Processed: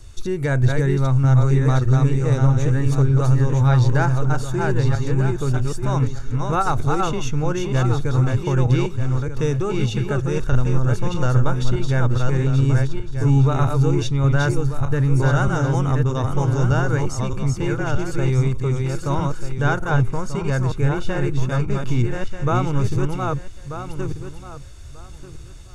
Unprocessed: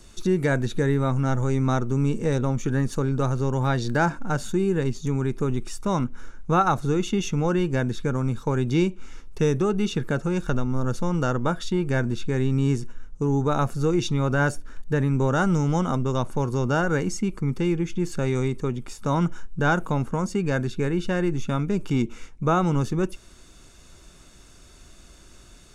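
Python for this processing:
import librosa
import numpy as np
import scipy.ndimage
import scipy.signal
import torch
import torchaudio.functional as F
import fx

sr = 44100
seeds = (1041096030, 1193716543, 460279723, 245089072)

y = fx.reverse_delay_fb(x, sr, ms=619, feedback_pct=43, wet_db=-3)
y = fx.low_shelf_res(y, sr, hz=140.0, db=8.5, q=3.0)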